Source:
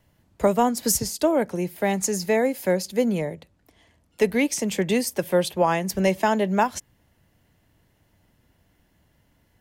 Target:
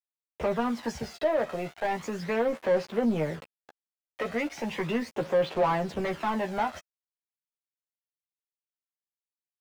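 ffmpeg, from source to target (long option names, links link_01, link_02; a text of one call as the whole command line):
ffmpeg -i in.wav -filter_complex "[0:a]lowpass=2800,asplit=2[link_01][link_02];[link_02]acompressor=threshold=-32dB:ratio=12,volume=-2.5dB[link_03];[link_01][link_03]amix=inputs=2:normalize=0,asoftclip=type=tanh:threshold=-16.5dB,acrusher=bits=6:mix=0:aa=0.000001,aphaser=in_gain=1:out_gain=1:delay=1.6:decay=0.47:speed=0.36:type=sinusoidal,asplit=2[link_04][link_05];[link_05]highpass=frequency=720:poles=1,volume=18dB,asoftclip=type=tanh:threshold=-11dB[link_06];[link_04][link_06]amix=inputs=2:normalize=0,lowpass=frequency=1500:poles=1,volume=-6dB,asplit=2[link_07][link_08];[link_08]adelay=13,volume=-5dB[link_09];[link_07][link_09]amix=inputs=2:normalize=0,volume=-9dB" out.wav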